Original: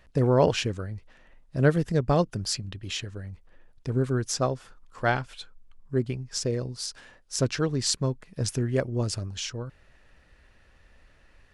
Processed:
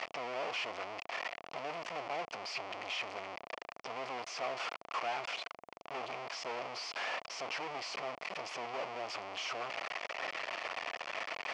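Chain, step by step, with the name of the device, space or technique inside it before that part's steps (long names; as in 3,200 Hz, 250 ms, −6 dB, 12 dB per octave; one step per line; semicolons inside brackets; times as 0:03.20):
home computer beeper (sign of each sample alone; loudspeaker in its box 630–4,500 Hz, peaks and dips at 690 Hz +7 dB, 1,100 Hz +3 dB, 1,600 Hz −8 dB, 2,300 Hz +4 dB, 3,800 Hz −10 dB)
level −5 dB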